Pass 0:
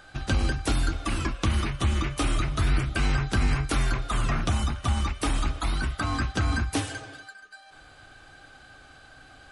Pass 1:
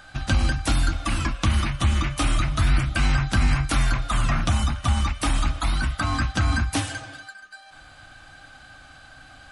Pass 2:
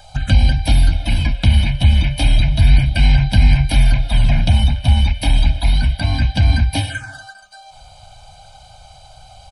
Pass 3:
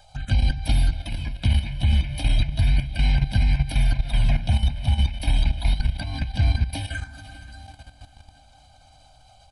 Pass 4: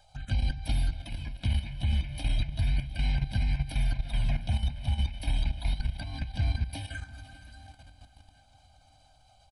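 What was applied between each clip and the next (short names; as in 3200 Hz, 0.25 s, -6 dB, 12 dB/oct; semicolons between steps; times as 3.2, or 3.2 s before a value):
bell 410 Hz -15 dB 0.39 oct; gain +4 dB
comb 1.3 ms, depth 93%; envelope phaser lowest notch 230 Hz, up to 1300 Hz, full sweep at -19 dBFS; gain +4.5 dB
diffused feedback echo 0.489 s, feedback 51%, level -15.5 dB; level quantiser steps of 12 dB; gain -4.5 dB
feedback echo 0.716 s, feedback 42%, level -22 dB; gain -8 dB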